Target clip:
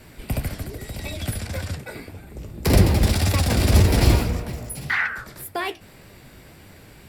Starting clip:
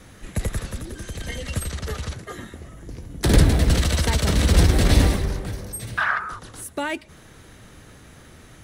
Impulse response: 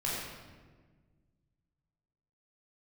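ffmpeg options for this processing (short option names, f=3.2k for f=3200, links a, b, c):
-af "bandreject=f=5.3k:w=10,asetrate=53802,aresample=44100,flanger=delay=9.9:depth=9.2:regen=60:speed=1.8:shape=sinusoidal,volume=4dB"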